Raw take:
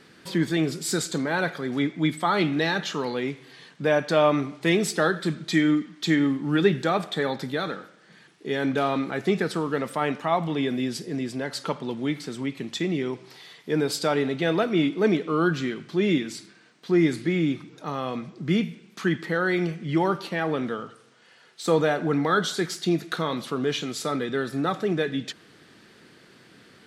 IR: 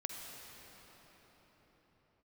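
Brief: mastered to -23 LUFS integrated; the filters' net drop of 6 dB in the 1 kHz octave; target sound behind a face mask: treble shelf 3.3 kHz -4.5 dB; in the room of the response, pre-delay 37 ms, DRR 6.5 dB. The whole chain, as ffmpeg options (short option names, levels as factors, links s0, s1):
-filter_complex "[0:a]equalizer=f=1000:t=o:g=-8,asplit=2[s0][s1];[1:a]atrim=start_sample=2205,adelay=37[s2];[s1][s2]afir=irnorm=-1:irlink=0,volume=0.473[s3];[s0][s3]amix=inputs=2:normalize=0,highshelf=f=3300:g=-4.5,volume=1.5"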